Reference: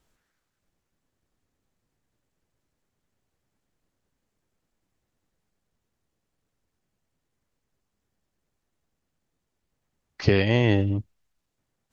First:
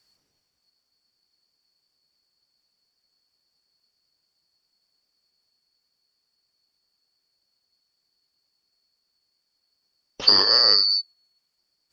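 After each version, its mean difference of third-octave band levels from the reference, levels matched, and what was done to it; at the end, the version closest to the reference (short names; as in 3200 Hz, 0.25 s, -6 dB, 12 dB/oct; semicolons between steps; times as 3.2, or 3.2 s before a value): 13.5 dB: four-band scrambler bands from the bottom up 2341; gain +3 dB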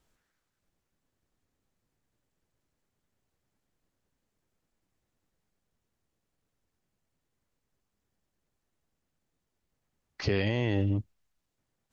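2.0 dB: limiter -14 dBFS, peak gain reduction 9 dB; gain -2.5 dB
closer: second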